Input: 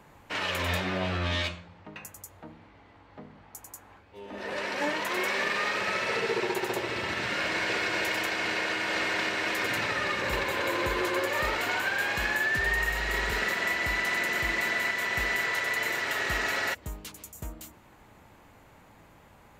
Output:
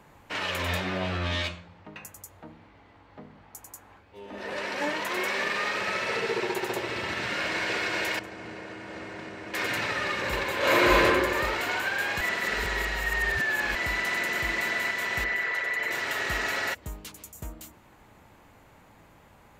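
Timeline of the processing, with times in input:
8.19–9.54 s: FFT filter 150 Hz 0 dB, 3.7 kHz -18 dB, 8.3 kHz -15 dB, 14 kHz -22 dB
10.58–11.03 s: reverb throw, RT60 1.4 s, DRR -9 dB
12.21–13.75 s: reverse
15.24–15.91 s: resonances exaggerated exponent 1.5

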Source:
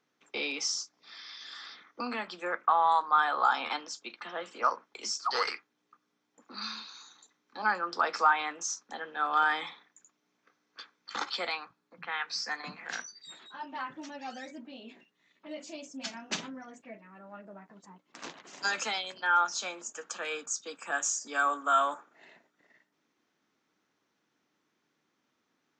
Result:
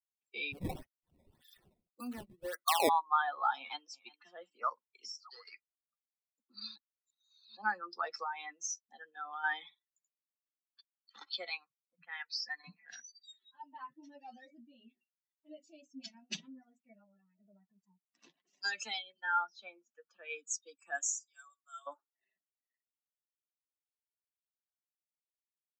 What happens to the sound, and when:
0.52–2.89 s: decimation with a swept rate 17×, swing 160% 1.8 Hz
3.57–4.02 s: echo throw 360 ms, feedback 25%, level -12 dB
4.73–5.53 s: compression, threshold -35 dBFS
6.76–7.57 s: reverse
8.23–9.44 s: compression 2:1, threshold -30 dBFS
10.81–11.36 s: fade in, from -16.5 dB
13.89–14.85 s: doubling 21 ms -8.5 dB
16.96–17.41 s: reverse
18.99–20.30 s: distance through air 200 m
21.04–21.87 s: differentiator
whole clip: expander on every frequency bin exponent 2; band-stop 2.1 kHz, Q 17; dynamic bell 1.3 kHz, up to -3 dB, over -41 dBFS, Q 1.3

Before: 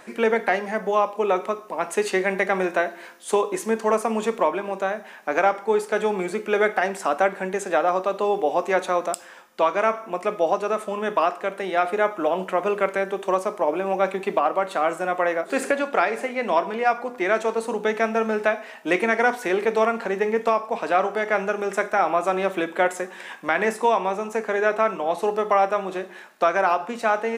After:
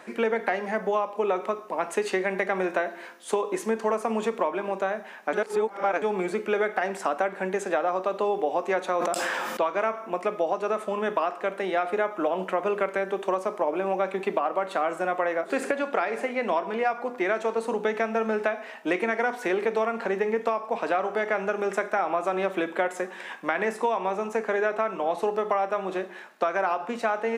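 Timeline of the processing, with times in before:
5.33–6.02 s: reverse
8.94–9.67 s: decay stretcher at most 23 dB/s
whole clip: compression, threshold -21 dBFS; high-pass 150 Hz; treble shelf 5 kHz -7 dB

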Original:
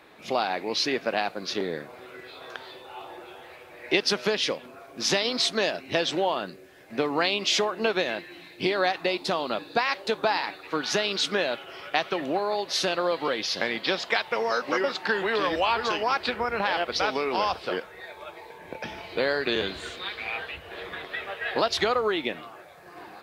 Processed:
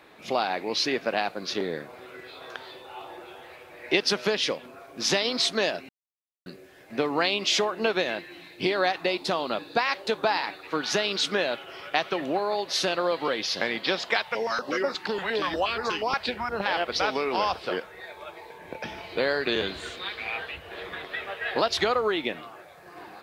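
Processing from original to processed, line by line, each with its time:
5.89–6.46 s: mute
14.23–16.66 s: step-sequenced notch 8.4 Hz 340–3100 Hz

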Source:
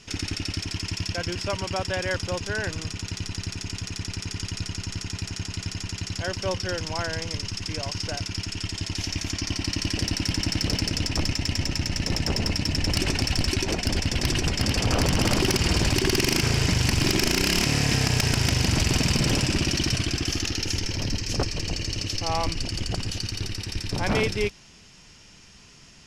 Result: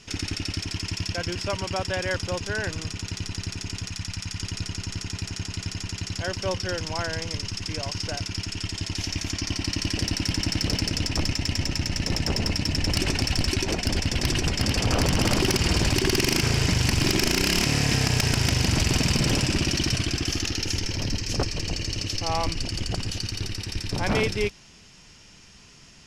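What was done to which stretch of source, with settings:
3.89–4.41 s: peaking EQ 390 Hz -11.5 dB 0.86 oct

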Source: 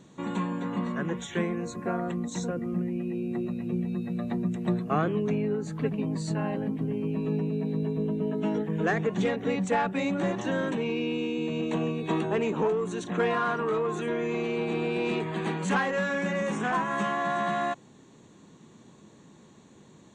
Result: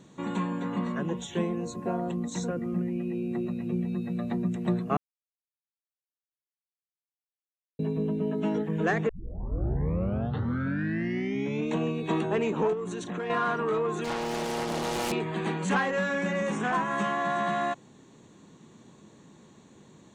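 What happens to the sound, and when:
0.99–2.22 s: time-frequency box 1.1–2.5 kHz -8 dB
4.97–7.79 s: mute
9.09 s: tape start 2.68 s
12.73–13.30 s: compression, threshold -30 dBFS
14.04–15.12 s: self-modulated delay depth 0.74 ms

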